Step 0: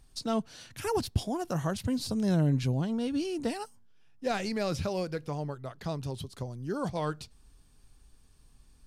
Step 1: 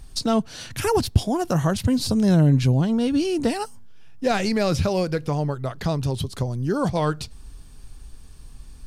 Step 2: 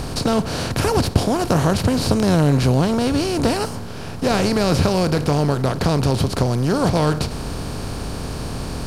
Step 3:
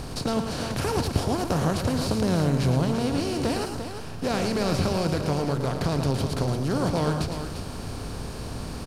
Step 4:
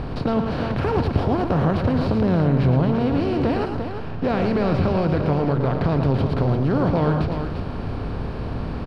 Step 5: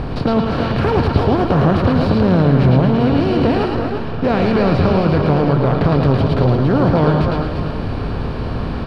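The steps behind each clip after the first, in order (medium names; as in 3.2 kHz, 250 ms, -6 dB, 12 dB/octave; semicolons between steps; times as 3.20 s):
bass shelf 110 Hz +5.5 dB; in parallel at +1 dB: compression, threshold -37 dBFS, peak gain reduction 17.5 dB; on the sum: trim +6 dB
spectral levelling over time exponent 0.4; trim -2 dB
multi-tap echo 111/346 ms -7.5/-8.5 dB; trim -8 dB
in parallel at 0 dB: peak limiter -18.5 dBFS, peak gain reduction 8.5 dB; on the sum: distance through air 390 m; trim +1 dB
repeats whose band climbs or falls 109 ms, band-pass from 3.5 kHz, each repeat -1.4 oct, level -0.5 dB; trim +5.5 dB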